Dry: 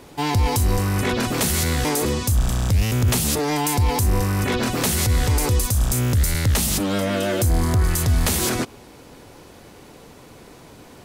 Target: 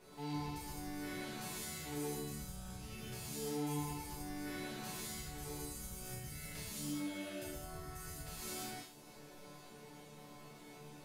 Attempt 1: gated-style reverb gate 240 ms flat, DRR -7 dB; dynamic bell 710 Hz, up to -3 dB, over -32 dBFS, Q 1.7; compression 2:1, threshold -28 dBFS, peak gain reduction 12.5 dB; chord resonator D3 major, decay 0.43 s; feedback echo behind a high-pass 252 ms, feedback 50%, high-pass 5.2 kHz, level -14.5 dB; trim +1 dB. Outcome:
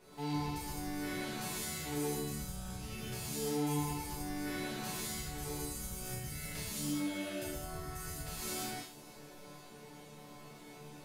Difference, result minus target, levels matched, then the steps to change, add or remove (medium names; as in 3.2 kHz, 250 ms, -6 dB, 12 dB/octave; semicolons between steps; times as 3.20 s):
compression: peak gain reduction -5 dB
change: compression 2:1, threshold -37.5 dBFS, peak gain reduction 17.5 dB